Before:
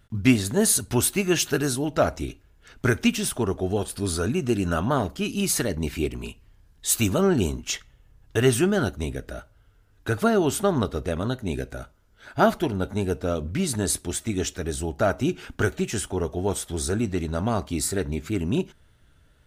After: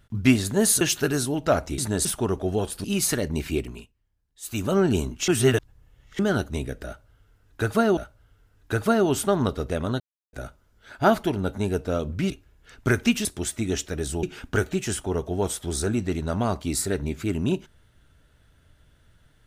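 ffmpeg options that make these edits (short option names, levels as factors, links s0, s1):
-filter_complex "[0:a]asplit=15[s0][s1][s2][s3][s4][s5][s6][s7][s8][s9][s10][s11][s12][s13][s14];[s0]atrim=end=0.812[s15];[s1]atrim=start=1.308:end=2.282[s16];[s2]atrim=start=13.658:end=13.932[s17];[s3]atrim=start=3.228:end=4.022[s18];[s4]atrim=start=5.308:end=6.4,asetpts=PTS-STARTPTS,afade=t=out:st=0.732:d=0.36:silence=0.112202[s19];[s5]atrim=start=6.4:end=6.89,asetpts=PTS-STARTPTS,volume=0.112[s20];[s6]atrim=start=6.89:end=7.752,asetpts=PTS-STARTPTS,afade=t=in:d=0.36:silence=0.112202[s21];[s7]atrim=start=7.748:end=8.662,asetpts=PTS-STARTPTS,areverse[s22];[s8]atrim=start=8.658:end=10.442[s23];[s9]atrim=start=9.328:end=11.36,asetpts=PTS-STARTPTS,afade=t=out:st=2.028:d=0.004:c=hsin[s24];[s10]atrim=start=11.36:end=11.69,asetpts=PTS-STARTPTS,volume=0[s25];[s11]atrim=start=11.69:end=13.662,asetpts=PTS-STARTPTS,afade=t=in:d=0.004:c=hsin[s26];[s12]atrim=start=2.278:end=3.232[s27];[s13]atrim=start=13.928:end=14.912[s28];[s14]atrim=start=15.288[s29];[s15][s16]acrossfade=d=0.004:c1=hsin:c2=hsin[s30];[s30][s17]acrossfade=d=0.004:c1=hsin:c2=hsin[s31];[s31][s18]acrossfade=d=0.004:c1=hsin:c2=hsin[s32];[s19][s20][s21]concat=n=3:v=0:a=1[s33];[s32][s33]acrossfade=d=0.004:c1=hsin:c2=hsin[s34];[s34][s22]acrossfade=d=0.004:c1=hsin:c2=hsin[s35];[s35][s23]acrossfade=d=0.004:c1=hsin:c2=hsin[s36];[s24][s25][s26]concat=n=3:v=0:a=1[s37];[s36][s37]acrossfade=d=0.004:c1=hsin:c2=hsin[s38];[s38][s27]acrossfade=d=0.004:c1=hsin:c2=hsin[s39];[s39][s28]acrossfade=d=0.004:c1=hsin:c2=hsin[s40];[s40][s29]acrossfade=d=0.004:c1=hsin:c2=hsin"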